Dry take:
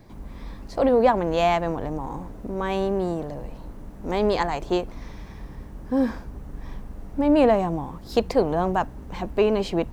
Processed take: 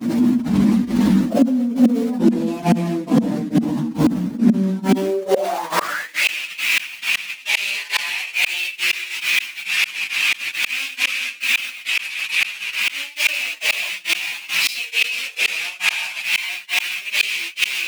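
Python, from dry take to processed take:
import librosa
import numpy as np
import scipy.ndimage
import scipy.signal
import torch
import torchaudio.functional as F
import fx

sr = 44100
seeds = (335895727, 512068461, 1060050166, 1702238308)

y = fx.rider(x, sr, range_db=4, speed_s=0.5)
y = fx.peak_eq(y, sr, hz=200.0, db=8.5, octaves=1.2)
y = fx.room_shoebox(y, sr, seeds[0], volume_m3=180.0, walls='mixed', distance_m=2.9)
y = fx.quant_companded(y, sr, bits=4)
y = fx.peak_eq(y, sr, hz=64.0, db=10.0, octaves=2.6)
y = fx.granulator(y, sr, seeds[1], grain_ms=232.0, per_s=4.1, spray_ms=100.0, spread_st=0)
y = fx.stretch_vocoder_free(y, sr, factor=1.8)
y = fx.gate_flip(y, sr, shuts_db=-10.0, range_db=-38)
y = fx.filter_sweep_highpass(y, sr, from_hz=230.0, to_hz=2500.0, start_s=4.88, end_s=6.24, q=7.5)
y = fx.env_flatten(y, sr, amount_pct=70)
y = y * librosa.db_to_amplitude(-1.0)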